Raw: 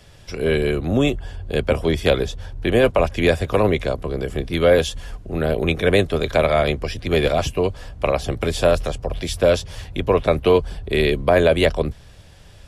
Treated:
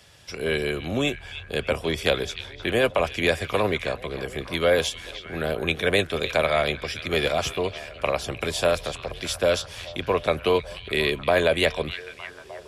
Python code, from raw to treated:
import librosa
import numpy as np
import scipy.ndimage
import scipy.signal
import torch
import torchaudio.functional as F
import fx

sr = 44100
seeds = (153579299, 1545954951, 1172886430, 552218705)

y = scipy.signal.sosfilt(scipy.signal.butter(2, 58.0, 'highpass', fs=sr, output='sos'), x)
y = fx.tilt_shelf(y, sr, db=-4.5, hz=710.0)
y = fx.echo_stepped(y, sr, ms=304, hz=3200.0, octaves=-0.7, feedback_pct=70, wet_db=-9.0)
y = F.gain(torch.from_numpy(y), -4.5).numpy()